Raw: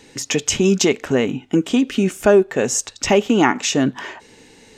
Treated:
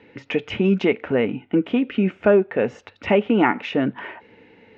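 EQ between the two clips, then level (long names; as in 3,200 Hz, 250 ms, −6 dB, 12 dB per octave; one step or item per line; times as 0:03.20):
loudspeaker in its box 110–2,300 Hz, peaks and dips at 150 Hz −10 dB, 260 Hz −6 dB, 380 Hz −6 dB, 640 Hz −4 dB, 1,100 Hz −8 dB, 1,700 Hz −6 dB
notch filter 800 Hz, Q 12
+2.5 dB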